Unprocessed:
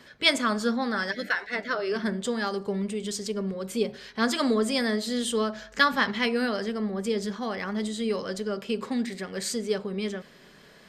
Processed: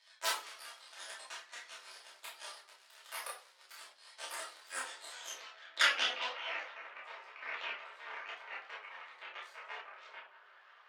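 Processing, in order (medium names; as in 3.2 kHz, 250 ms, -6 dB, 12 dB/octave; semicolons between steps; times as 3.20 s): cycle switcher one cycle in 3, muted; bucket-brigade echo 170 ms, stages 2048, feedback 58%, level -15.5 dB; compression 2:1, threshold -45 dBFS, peak gain reduction 15.5 dB; band-pass sweep 4.9 kHz -> 1.2 kHz, 4.60–6.25 s; Chebyshev shaper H 3 -7 dB, 5 -28 dB, 6 -15 dB, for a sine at -25.5 dBFS; high-pass 530 Hz 24 dB/octave; peaking EQ 1.9 kHz +8.5 dB 3 oct; simulated room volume 260 m³, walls furnished, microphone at 2.7 m; chorus voices 6, 0.34 Hz, delay 29 ms, depth 2.9 ms; trim +9.5 dB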